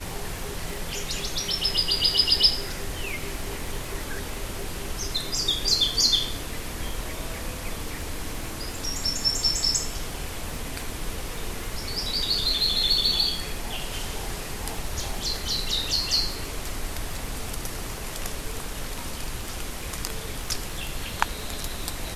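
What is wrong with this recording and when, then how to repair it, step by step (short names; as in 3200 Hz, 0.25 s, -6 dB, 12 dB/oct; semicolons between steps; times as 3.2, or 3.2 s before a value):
crackle 27/s -31 dBFS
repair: de-click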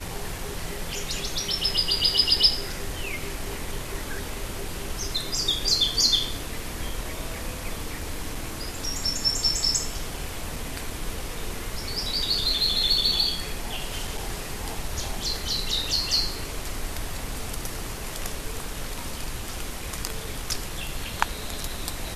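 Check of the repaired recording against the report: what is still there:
none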